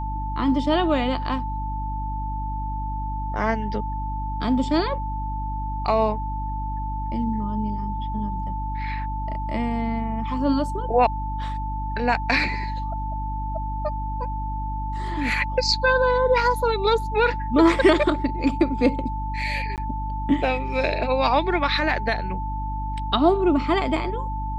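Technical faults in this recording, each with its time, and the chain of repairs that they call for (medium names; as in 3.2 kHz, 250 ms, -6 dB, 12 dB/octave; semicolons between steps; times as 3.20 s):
hum 50 Hz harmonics 6 -29 dBFS
whine 880 Hz -30 dBFS
19.76–19.78 s: dropout 18 ms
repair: band-stop 880 Hz, Q 30; de-hum 50 Hz, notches 6; interpolate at 19.76 s, 18 ms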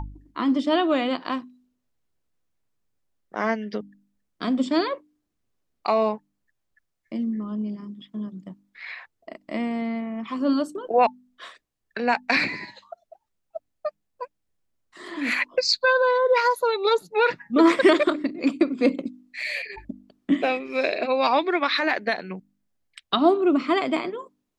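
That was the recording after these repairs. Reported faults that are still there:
nothing left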